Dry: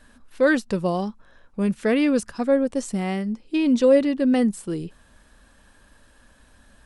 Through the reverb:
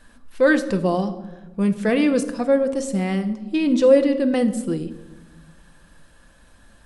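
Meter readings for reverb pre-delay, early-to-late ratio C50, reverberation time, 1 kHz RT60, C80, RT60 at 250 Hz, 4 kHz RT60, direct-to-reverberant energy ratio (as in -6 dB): 6 ms, 13.0 dB, 1.2 s, 1.1 s, 15.0 dB, 1.8 s, 0.70 s, 8.0 dB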